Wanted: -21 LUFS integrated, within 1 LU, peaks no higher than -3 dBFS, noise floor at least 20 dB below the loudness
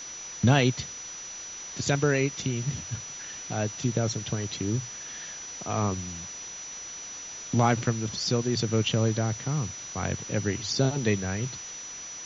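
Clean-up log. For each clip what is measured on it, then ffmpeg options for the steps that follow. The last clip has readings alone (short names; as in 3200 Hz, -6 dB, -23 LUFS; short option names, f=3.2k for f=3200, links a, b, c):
steady tone 5900 Hz; tone level -38 dBFS; noise floor -40 dBFS; noise floor target -49 dBFS; loudness -29.0 LUFS; peak -7.5 dBFS; loudness target -21.0 LUFS
-> -af "bandreject=f=5.9k:w=30"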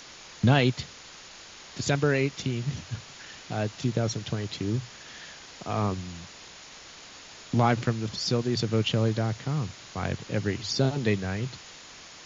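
steady tone none; noise floor -47 dBFS; noise floor target -48 dBFS
-> -af "afftdn=nr=6:nf=-47"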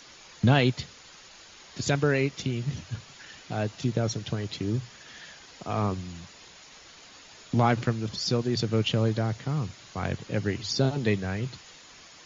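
noise floor -51 dBFS; loudness -28.0 LUFS; peak -8.0 dBFS; loudness target -21.0 LUFS
-> -af "volume=7dB,alimiter=limit=-3dB:level=0:latency=1"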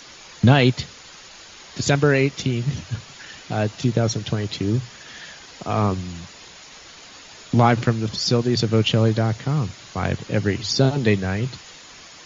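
loudness -21.5 LUFS; peak -3.0 dBFS; noise floor -44 dBFS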